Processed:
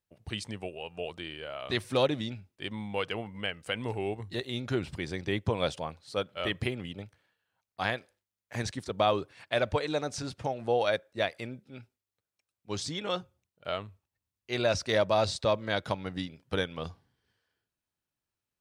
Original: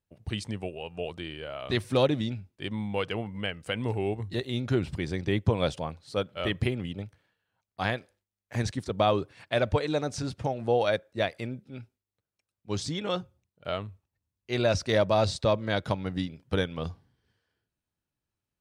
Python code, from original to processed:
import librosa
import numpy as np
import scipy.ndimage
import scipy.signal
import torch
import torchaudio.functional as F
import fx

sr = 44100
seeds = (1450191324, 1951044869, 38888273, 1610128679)

y = fx.low_shelf(x, sr, hz=360.0, db=-7.0)